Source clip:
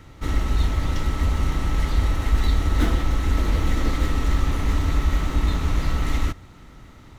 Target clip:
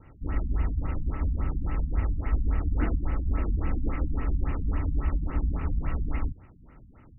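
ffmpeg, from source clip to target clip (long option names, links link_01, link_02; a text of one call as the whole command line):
ffmpeg -i in.wav -filter_complex "[0:a]asettb=1/sr,asplit=3[link_01][link_02][link_03];[link_01]atrim=end=1.174[link_04];[link_02]atrim=start=1.17:end=1.62,asetpts=PTS-STARTPTS,afade=type=in:duration=0.004:curve=qsin,afade=type=out:start_time=0.446:duration=0.004:curve=qsin,equalizer=frequency=5500:width=0.42:gain=-5.5[link_05];[link_03]atrim=start=1.616[link_06];[link_04][link_05]acrossfade=duration=0.004:curve1=hsin:curve2=qsin[link_07];[link_07][link_06]acrossfade=duration=0.004:curve1=qsin:curve2=hsin,afftfilt=real='re*lt(b*sr/1024,250*pow(3000/250,0.5+0.5*sin(2*PI*3.6*pts/sr)))':imag='im*lt(b*sr/1024,250*pow(3000/250,0.5+0.5*sin(2*PI*3.6*pts/sr)))':win_size=1024:overlap=0.75,volume=-6dB" out.wav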